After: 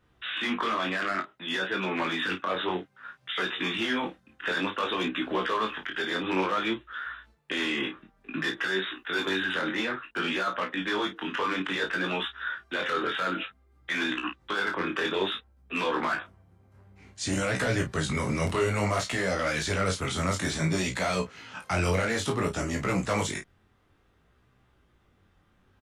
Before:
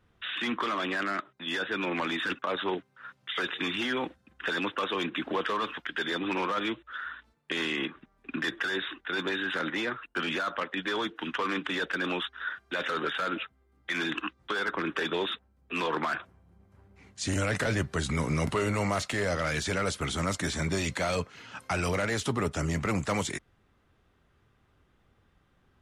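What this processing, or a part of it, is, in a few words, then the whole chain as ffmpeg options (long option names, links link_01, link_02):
double-tracked vocal: -filter_complex "[0:a]asettb=1/sr,asplit=3[link_01][link_02][link_03];[link_01]atrim=end=8.944[link_04];[link_02]atrim=start=8.94:end=9.53,asetpts=PTS-STARTPTS,afade=type=in:duration=0.004:curve=qsin,afade=type=out:start_time=0.586:duration=0.004:curve=qsin,highshelf=frequency=6900:gain=9.5[link_05];[link_03]atrim=start=9.526[link_06];[link_04][link_05]acrossfade=duration=0.004:curve1=hsin:curve2=qsin[link_07];[link_07][link_06]acrossfade=duration=0.004:curve1=qsin:curve2=hsin,asplit=2[link_08][link_09];[link_09]adelay=32,volume=-7.5dB[link_10];[link_08][link_10]amix=inputs=2:normalize=0,flanger=delay=15.5:depth=7.3:speed=0.57,volume=4dB"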